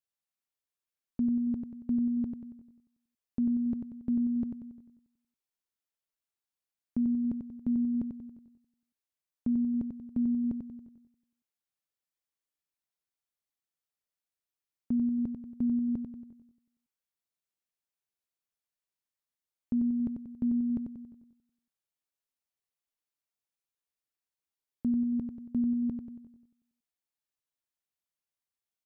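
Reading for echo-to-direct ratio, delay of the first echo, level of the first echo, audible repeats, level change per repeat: −5.0 dB, 93 ms, −6.0 dB, 5, −6.5 dB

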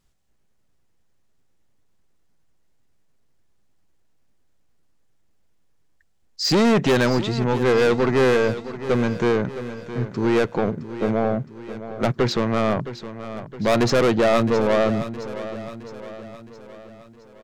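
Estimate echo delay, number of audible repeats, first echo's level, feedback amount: 665 ms, 4, −13.0 dB, 52%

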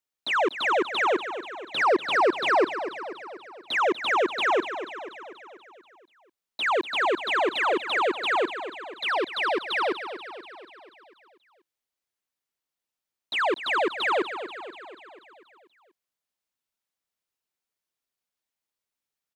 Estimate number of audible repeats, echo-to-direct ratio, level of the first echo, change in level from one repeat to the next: 6, −9.0 dB, −11.0 dB, −4.5 dB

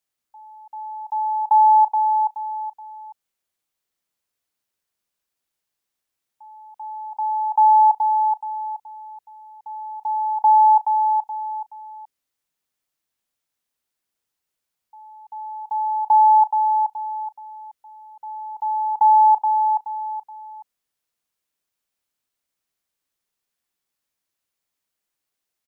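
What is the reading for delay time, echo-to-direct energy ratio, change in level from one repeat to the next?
425 ms, −5.0 dB, −9.5 dB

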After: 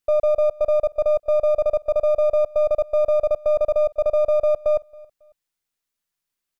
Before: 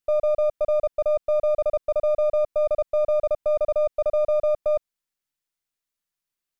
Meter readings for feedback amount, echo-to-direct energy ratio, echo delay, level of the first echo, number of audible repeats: 29%, −23.5 dB, 274 ms, −24.0 dB, 2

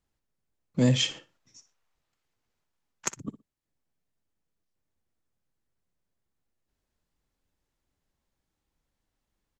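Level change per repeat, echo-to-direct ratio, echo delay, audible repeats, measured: −16.0 dB, −15.0 dB, 60 ms, 2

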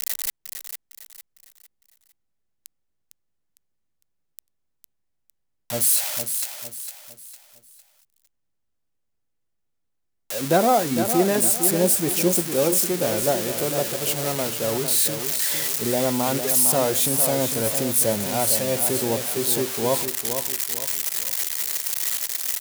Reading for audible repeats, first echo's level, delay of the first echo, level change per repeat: 4, −8.0 dB, 455 ms, −8.5 dB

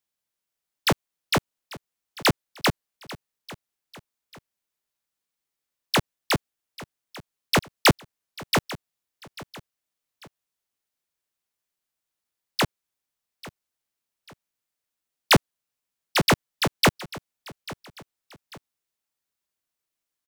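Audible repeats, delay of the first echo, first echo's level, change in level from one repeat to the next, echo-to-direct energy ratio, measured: 2, 843 ms, −18.5 dB, −8.0 dB, −18.0 dB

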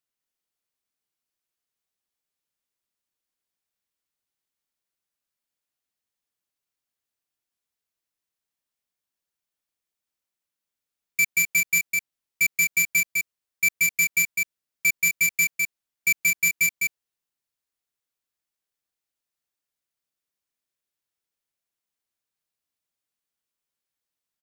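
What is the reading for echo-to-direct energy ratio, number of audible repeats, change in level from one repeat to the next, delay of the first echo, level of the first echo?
−4.0 dB, 1, repeats not evenly spaced, 205 ms, −4.0 dB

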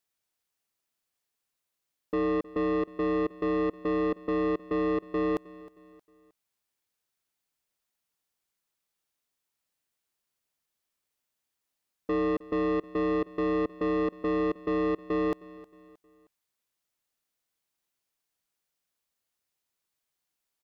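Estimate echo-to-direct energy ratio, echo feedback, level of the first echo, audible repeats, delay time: −18.5 dB, 41%, −19.5 dB, 3, 313 ms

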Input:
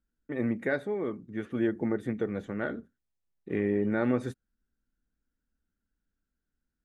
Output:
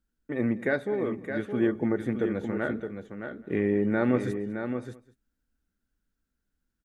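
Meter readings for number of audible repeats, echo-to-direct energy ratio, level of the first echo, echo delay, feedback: 3, −7.0 dB, −20.0 dB, 202 ms, repeats not evenly spaced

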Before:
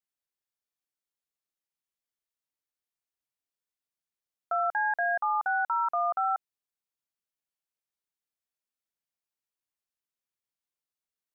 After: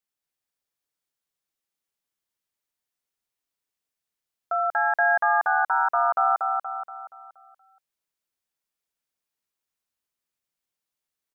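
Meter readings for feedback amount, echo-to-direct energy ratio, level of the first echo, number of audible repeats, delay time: 47%, −2.0 dB, −3.0 dB, 5, 237 ms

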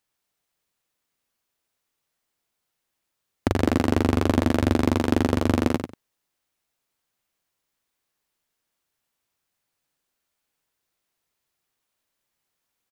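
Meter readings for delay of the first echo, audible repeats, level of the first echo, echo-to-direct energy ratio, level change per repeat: 95 ms, 2, −7.0 dB, −7.0 dB, −14.0 dB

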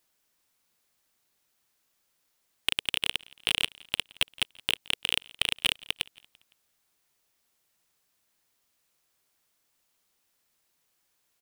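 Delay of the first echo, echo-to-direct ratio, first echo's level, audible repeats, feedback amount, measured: 170 ms, −23.0 dB, −24.0 dB, 2, 48%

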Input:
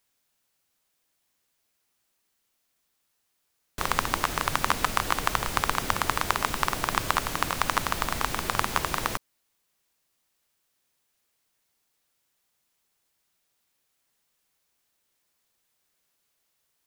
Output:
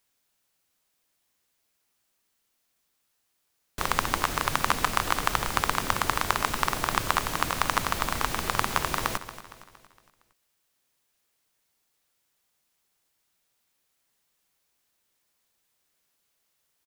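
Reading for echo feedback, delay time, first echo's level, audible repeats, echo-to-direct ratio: 48%, 231 ms, −14.0 dB, 4, −13.0 dB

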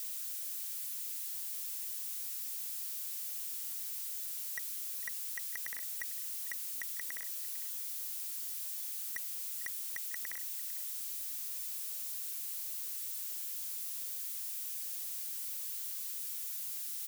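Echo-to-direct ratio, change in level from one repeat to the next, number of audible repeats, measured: −17.0 dB, repeats not evenly spaced, 1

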